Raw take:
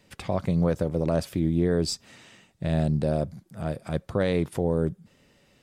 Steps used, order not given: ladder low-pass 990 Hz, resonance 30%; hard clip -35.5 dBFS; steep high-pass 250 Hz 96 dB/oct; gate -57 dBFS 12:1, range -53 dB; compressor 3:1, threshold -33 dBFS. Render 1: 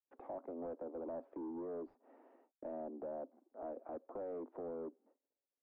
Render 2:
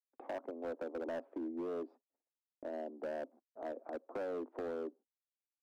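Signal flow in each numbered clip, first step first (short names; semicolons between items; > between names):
steep high-pass > gate > compressor > hard clip > ladder low-pass; ladder low-pass > compressor > steep high-pass > hard clip > gate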